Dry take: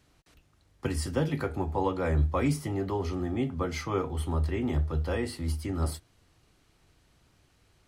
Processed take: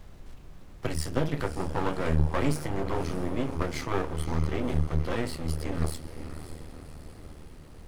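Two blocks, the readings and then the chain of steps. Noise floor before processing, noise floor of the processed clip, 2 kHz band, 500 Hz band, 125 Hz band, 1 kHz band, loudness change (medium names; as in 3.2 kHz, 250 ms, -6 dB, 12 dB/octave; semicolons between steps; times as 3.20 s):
-66 dBFS, -48 dBFS, +2.0 dB, -0.5 dB, 0.0 dB, +0.5 dB, -0.5 dB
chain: echo that smears into a reverb 564 ms, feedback 55%, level -11.5 dB; half-wave rectifier; added noise brown -49 dBFS; trim +4 dB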